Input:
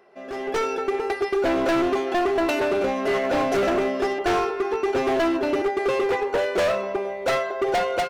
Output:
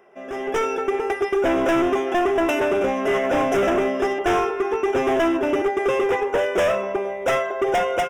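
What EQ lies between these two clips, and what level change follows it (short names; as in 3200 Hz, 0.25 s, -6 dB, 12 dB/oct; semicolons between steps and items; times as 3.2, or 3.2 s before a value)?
Butterworth band-stop 4300 Hz, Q 2.4; +2.0 dB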